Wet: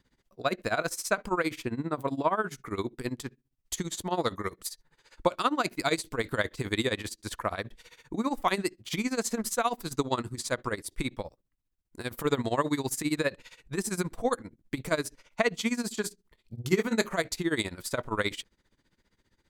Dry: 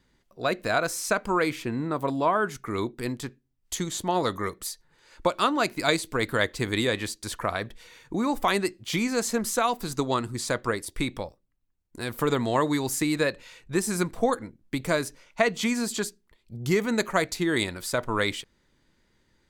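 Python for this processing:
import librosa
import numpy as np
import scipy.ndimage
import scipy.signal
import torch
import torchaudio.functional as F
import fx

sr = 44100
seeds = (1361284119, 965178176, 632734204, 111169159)

y = fx.doubler(x, sr, ms=27.0, db=-5.5, at=(16.01, 17.17))
y = y * (1.0 - 0.88 / 2.0 + 0.88 / 2.0 * np.cos(2.0 * np.pi * 15.0 * (np.arange(len(y)) / sr)))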